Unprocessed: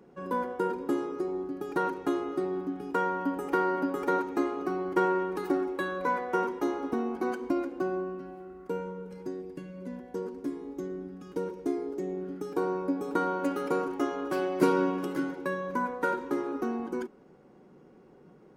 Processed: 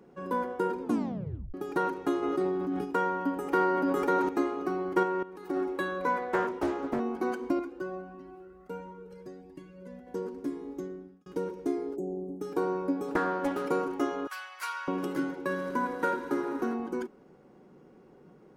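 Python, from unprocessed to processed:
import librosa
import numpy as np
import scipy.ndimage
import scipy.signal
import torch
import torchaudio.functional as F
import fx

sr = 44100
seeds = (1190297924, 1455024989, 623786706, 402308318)

y = fx.sustainer(x, sr, db_per_s=22.0, at=(2.22, 2.84), fade=0.02)
y = fx.sustainer(y, sr, db_per_s=21.0, at=(3.43, 4.29))
y = fx.level_steps(y, sr, step_db=15, at=(5.03, 5.57))
y = fx.doppler_dist(y, sr, depth_ms=0.45, at=(6.22, 7.0))
y = fx.comb_cascade(y, sr, direction='rising', hz=1.5, at=(7.59, 10.07))
y = fx.ellip_bandstop(y, sr, low_hz=790.0, high_hz=7600.0, order=3, stop_db=40, at=(11.95, 12.4), fade=0.02)
y = fx.doppler_dist(y, sr, depth_ms=0.37, at=(13.08, 13.66))
y = fx.cheby2_highpass(y, sr, hz=260.0, order=4, stop_db=70, at=(14.27, 14.88))
y = fx.echo_swell(y, sr, ms=80, loudest=5, wet_db=-18.0, at=(15.45, 16.73), fade=0.02)
y = fx.edit(y, sr, fx.tape_stop(start_s=0.81, length_s=0.73),
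    fx.fade_out_span(start_s=10.75, length_s=0.51), tone=tone)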